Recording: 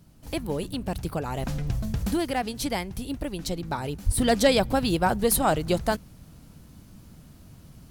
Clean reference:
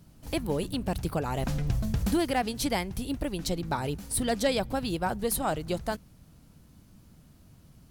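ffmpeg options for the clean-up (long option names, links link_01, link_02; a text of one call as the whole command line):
ffmpeg -i in.wav -filter_complex "[0:a]asplit=3[link_01][link_02][link_03];[link_01]afade=type=out:start_time=4.05:duration=0.02[link_04];[link_02]highpass=frequency=140:width=0.5412,highpass=frequency=140:width=1.3066,afade=type=in:start_time=4.05:duration=0.02,afade=type=out:start_time=4.17:duration=0.02[link_05];[link_03]afade=type=in:start_time=4.17:duration=0.02[link_06];[link_04][link_05][link_06]amix=inputs=3:normalize=0,asetnsamples=nb_out_samples=441:pad=0,asendcmd='4.18 volume volume -6.5dB',volume=0dB" out.wav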